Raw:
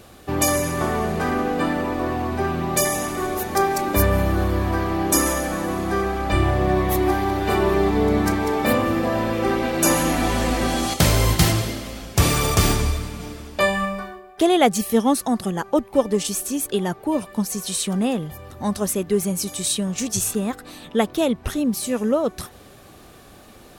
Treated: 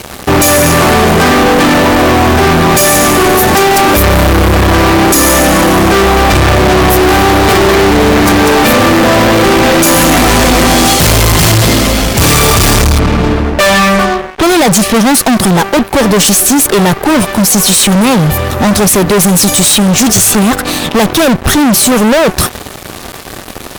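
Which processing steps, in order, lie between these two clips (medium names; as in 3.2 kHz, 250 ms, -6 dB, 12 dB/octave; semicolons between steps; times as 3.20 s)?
12.99–15.09 s: level-controlled noise filter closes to 1.2 kHz, open at -13.5 dBFS; fuzz box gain 36 dB, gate -44 dBFS; trim +7.5 dB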